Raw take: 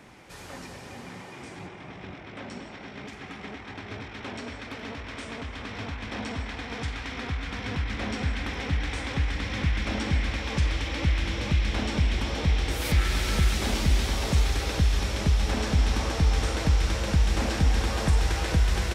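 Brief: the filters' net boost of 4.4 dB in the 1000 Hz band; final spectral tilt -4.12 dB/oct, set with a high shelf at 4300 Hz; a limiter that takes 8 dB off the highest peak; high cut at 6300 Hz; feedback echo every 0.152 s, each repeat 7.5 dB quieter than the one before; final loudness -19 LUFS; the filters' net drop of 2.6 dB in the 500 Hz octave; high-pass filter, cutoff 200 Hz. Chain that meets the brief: HPF 200 Hz; LPF 6300 Hz; bell 500 Hz -5 dB; bell 1000 Hz +7.5 dB; high shelf 4300 Hz -6.5 dB; limiter -24.5 dBFS; feedback echo 0.152 s, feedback 42%, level -7.5 dB; gain +15 dB

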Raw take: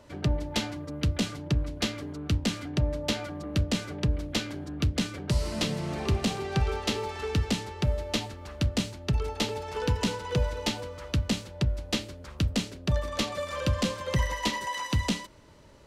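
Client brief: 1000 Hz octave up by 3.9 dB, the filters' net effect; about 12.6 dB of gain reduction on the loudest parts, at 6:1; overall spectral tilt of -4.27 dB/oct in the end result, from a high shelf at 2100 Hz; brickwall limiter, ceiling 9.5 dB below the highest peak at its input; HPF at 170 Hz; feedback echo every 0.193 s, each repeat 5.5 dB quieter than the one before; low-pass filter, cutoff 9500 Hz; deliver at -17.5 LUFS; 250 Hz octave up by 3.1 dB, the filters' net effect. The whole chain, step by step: HPF 170 Hz; LPF 9500 Hz; bell 250 Hz +5.5 dB; bell 1000 Hz +3.5 dB; high shelf 2100 Hz +3.5 dB; compressor 6:1, threshold -34 dBFS; limiter -25.5 dBFS; feedback echo 0.193 s, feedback 53%, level -5.5 dB; gain +20.5 dB

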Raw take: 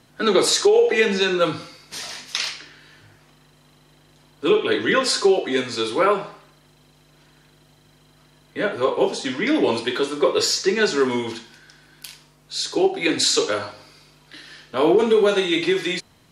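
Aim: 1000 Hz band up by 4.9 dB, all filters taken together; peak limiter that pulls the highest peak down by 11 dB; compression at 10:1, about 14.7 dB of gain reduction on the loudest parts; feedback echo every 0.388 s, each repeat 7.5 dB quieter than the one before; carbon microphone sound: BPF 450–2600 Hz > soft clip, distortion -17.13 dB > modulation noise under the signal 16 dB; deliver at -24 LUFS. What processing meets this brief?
bell 1000 Hz +6.5 dB; compressor 10:1, threshold -26 dBFS; limiter -21 dBFS; BPF 450–2600 Hz; feedback echo 0.388 s, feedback 42%, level -7.5 dB; soft clip -27.5 dBFS; modulation noise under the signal 16 dB; gain +12.5 dB

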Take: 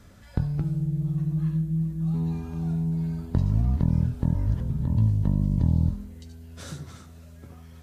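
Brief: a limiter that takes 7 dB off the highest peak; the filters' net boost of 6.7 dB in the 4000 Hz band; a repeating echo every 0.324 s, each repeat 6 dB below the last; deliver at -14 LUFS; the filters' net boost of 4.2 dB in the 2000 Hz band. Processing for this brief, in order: bell 2000 Hz +4 dB; bell 4000 Hz +7 dB; limiter -17 dBFS; feedback echo 0.324 s, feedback 50%, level -6 dB; gain +12.5 dB

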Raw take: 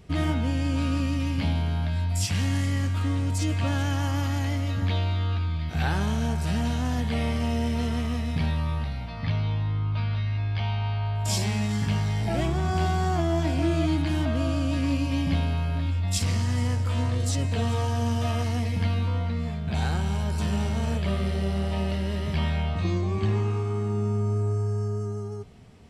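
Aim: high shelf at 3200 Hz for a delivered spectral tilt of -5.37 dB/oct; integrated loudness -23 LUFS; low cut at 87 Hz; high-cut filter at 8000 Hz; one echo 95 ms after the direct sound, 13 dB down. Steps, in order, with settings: HPF 87 Hz; LPF 8000 Hz; high shelf 3200 Hz +6 dB; echo 95 ms -13 dB; gain +4.5 dB

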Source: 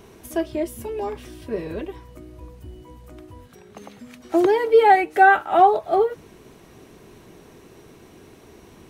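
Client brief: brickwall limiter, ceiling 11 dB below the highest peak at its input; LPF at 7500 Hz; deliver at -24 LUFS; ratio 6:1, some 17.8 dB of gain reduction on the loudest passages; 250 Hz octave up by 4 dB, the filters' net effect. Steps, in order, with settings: LPF 7500 Hz; bell 250 Hz +7 dB; compressor 6:1, threshold -28 dBFS; gain +14.5 dB; limiter -13.5 dBFS

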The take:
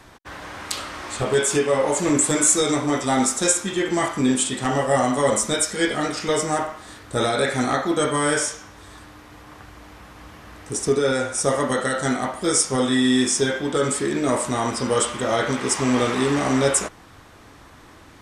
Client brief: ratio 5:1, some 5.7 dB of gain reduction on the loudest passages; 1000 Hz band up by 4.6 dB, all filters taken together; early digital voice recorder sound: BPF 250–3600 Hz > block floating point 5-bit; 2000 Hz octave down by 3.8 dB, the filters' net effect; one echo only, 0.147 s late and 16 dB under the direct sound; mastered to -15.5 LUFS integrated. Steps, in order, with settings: bell 1000 Hz +8.5 dB; bell 2000 Hz -8.5 dB; compressor 5:1, threshold -19 dBFS; BPF 250–3600 Hz; echo 0.147 s -16 dB; block floating point 5-bit; gain +10 dB

